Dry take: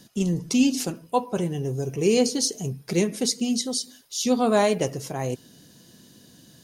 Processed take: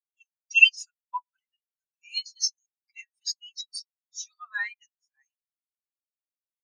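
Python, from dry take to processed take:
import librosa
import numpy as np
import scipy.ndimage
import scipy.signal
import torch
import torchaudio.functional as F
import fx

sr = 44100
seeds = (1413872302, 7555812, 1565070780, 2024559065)

p1 = fx.tracing_dist(x, sr, depth_ms=0.074)
p2 = scipy.signal.sosfilt(scipy.signal.butter(4, 1400.0, 'highpass', fs=sr, output='sos'), p1)
p3 = fx.leveller(p2, sr, passes=1, at=(0.52, 1.15))
p4 = 10.0 ** (-23.5 / 20.0) * np.tanh(p3 / 10.0 ** (-23.5 / 20.0))
p5 = p3 + (p4 * librosa.db_to_amplitude(-5.0))
p6 = fx.spectral_expand(p5, sr, expansion=4.0)
y = p6 * librosa.db_to_amplitude(5.5)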